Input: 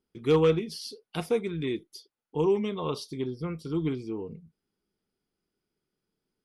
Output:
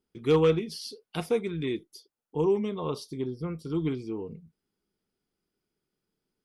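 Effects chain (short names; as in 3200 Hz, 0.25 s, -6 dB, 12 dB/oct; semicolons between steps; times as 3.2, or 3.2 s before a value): 1.85–3.7 bell 2800 Hz -5 dB 2 oct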